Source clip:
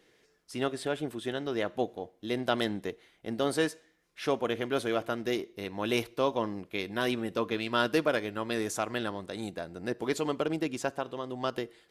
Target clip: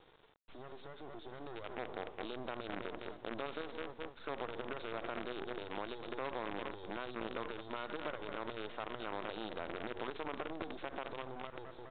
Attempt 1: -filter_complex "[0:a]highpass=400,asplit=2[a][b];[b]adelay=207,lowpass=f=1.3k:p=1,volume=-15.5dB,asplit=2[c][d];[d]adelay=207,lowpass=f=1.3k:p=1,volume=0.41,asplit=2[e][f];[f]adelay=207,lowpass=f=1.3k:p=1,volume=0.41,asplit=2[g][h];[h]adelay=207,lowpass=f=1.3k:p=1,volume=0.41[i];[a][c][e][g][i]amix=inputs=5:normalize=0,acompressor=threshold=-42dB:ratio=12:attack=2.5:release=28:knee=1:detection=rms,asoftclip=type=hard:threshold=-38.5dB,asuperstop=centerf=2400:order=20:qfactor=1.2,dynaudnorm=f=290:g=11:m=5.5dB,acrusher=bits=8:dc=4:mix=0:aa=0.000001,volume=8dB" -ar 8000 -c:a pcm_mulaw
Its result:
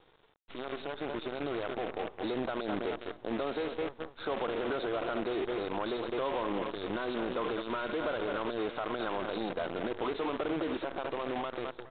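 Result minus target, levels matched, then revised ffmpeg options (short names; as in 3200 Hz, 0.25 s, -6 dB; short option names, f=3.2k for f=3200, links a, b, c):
compressor: peak gain reduction -8 dB
-filter_complex "[0:a]highpass=400,asplit=2[a][b];[b]adelay=207,lowpass=f=1.3k:p=1,volume=-15.5dB,asplit=2[c][d];[d]adelay=207,lowpass=f=1.3k:p=1,volume=0.41,asplit=2[e][f];[f]adelay=207,lowpass=f=1.3k:p=1,volume=0.41,asplit=2[g][h];[h]adelay=207,lowpass=f=1.3k:p=1,volume=0.41[i];[a][c][e][g][i]amix=inputs=5:normalize=0,acompressor=threshold=-50.5dB:ratio=12:attack=2.5:release=28:knee=1:detection=rms,asoftclip=type=hard:threshold=-38.5dB,asuperstop=centerf=2400:order=20:qfactor=1.2,dynaudnorm=f=290:g=11:m=5.5dB,acrusher=bits=8:dc=4:mix=0:aa=0.000001,volume=8dB" -ar 8000 -c:a pcm_mulaw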